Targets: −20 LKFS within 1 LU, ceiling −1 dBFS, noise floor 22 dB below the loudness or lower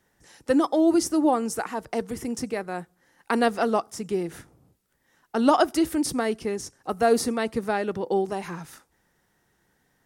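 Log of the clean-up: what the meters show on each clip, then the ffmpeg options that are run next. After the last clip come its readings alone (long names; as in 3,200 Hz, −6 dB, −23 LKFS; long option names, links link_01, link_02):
integrated loudness −25.0 LKFS; sample peak −4.5 dBFS; target loudness −20.0 LKFS
→ -af "volume=5dB,alimiter=limit=-1dB:level=0:latency=1"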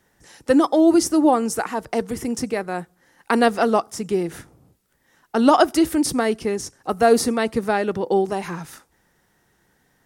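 integrated loudness −20.5 LKFS; sample peak −1.0 dBFS; background noise floor −65 dBFS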